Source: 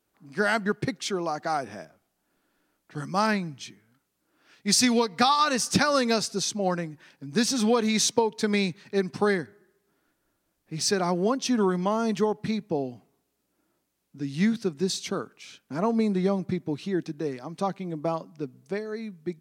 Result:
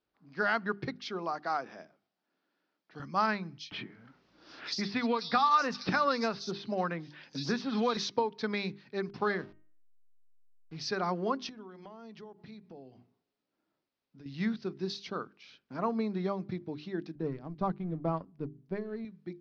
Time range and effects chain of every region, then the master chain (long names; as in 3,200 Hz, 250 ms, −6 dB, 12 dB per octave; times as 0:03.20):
0:01.33–0:03.00: high-pass filter 180 Hz + high-shelf EQ 10,000 Hz +10.5 dB
0:03.58–0:07.97: multiband delay without the direct sound highs, lows 130 ms, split 3,800 Hz + multiband upward and downward compressor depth 70%
0:09.09–0:10.77: hold until the input has moved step −43.5 dBFS + hum removal 310.5 Hz, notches 10
0:11.49–0:14.26: low-pass filter 9,500 Hz + mains-hum notches 60/120/180/240/300/360 Hz + downward compressor 4 to 1, threshold −39 dBFS
0:17.15–0:19.05: mu-law and A-law mismatch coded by A + RIAA equalisation playback
whole clip: Butterworth low-pass 5,300 Hz 48 dB per octave; mains-hum notches 50/100/150/200/250/300/350/400 Hz; dynamic equaliser 1,200 Hz, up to +7 dB, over −41 dBFS, Q 1.6; level −8 dB